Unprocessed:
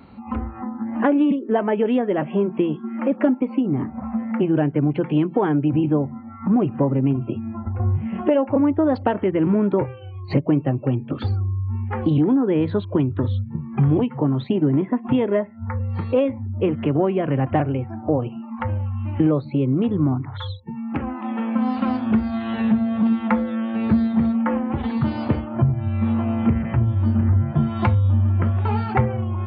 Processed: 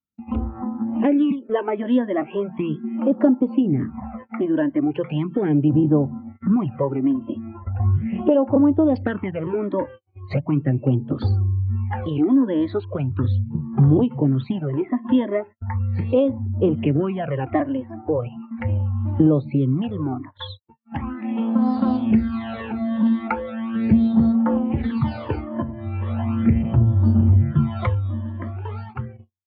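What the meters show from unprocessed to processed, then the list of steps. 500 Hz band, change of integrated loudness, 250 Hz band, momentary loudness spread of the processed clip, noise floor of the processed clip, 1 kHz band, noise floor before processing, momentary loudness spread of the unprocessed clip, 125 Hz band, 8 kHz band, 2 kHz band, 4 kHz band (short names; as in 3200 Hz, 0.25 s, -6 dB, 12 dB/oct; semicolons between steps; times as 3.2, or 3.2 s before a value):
-1.0 dB, 0.0 dB, 0.0 dB, 12 LU, -46 dBFS, -3.5 dB, -37 dBFS, 8 LU, 0.0 dB, n/a, -2.5 dB, -1.0 dB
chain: ending faded out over 1.80 s; phaser stages 12, 0.38 Hz, lowest notch 130–2500 Hz; gate -37 dBFS, range -49 dB; gain +1.5 dB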